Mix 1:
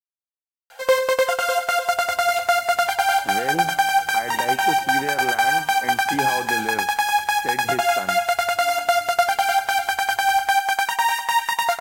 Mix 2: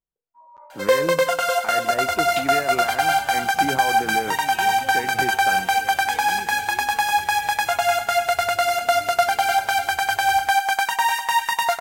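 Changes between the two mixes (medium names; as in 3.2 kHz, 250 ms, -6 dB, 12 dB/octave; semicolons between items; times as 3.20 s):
speech: entry -2.50 s; second sound +8.5 dB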